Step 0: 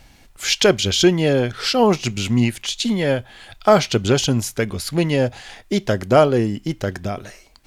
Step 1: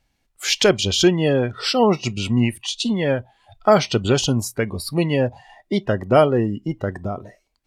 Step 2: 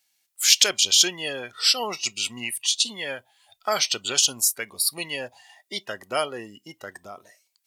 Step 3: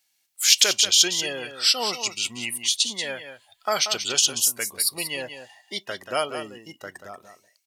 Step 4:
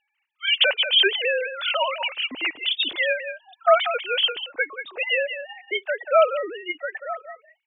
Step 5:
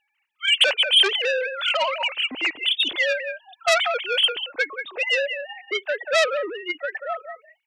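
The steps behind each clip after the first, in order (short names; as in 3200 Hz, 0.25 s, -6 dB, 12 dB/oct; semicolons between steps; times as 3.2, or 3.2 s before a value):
spectral noise reduction 19 dB; gain -1 dB
differentiator; gain +8.5 dB
echo 0.185 s -9.5 dB
sine-wave speech; gain +1.5 dB
core saturation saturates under 3800 Hz; gain +2.5 dB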